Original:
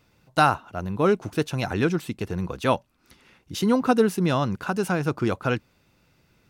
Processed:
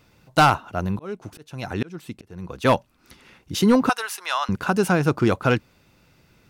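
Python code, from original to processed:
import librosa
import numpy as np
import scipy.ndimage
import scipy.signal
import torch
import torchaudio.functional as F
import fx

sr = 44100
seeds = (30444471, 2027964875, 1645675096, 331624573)

y = fx.auto_swell(x, sr, attack_ms=755.0, at=(0.81, 2.65))
y = fx.highpass(y, sr, hz=870.0, slope=24, at=(3.89, 4.49))
y = np.clip(10.0 ** (14.0 / 20.0) * y, -1.0, 1.0) / 10.0 ** (14.0 / 20.0)
y = y * 10.0 ** (5.0 / 20.0)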